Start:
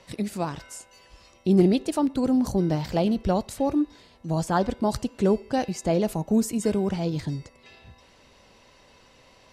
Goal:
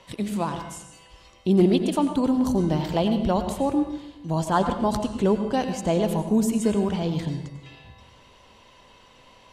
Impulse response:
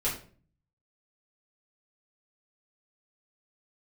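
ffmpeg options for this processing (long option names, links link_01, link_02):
-filter_complex "[0:a]equalizer=frequency=1000:width_type=o:width=0.33:gain=6,equalizer=frequency=3150:width_type=o:width=0.33:gain=7,equalizer=frequency=5000:width_type=o:width=0.33:gain=-4,asplit=2[link_01][link_02];[1:a]atrim=start_sample=2205,asetrate=22050,aresample=44100,adelay=87[link_03];[link_02][link_03]afir=irnorm=-1:irlink=0,volume=-20dB[link_04];[link_01][link_04]amix=inputs=2:normalize=0"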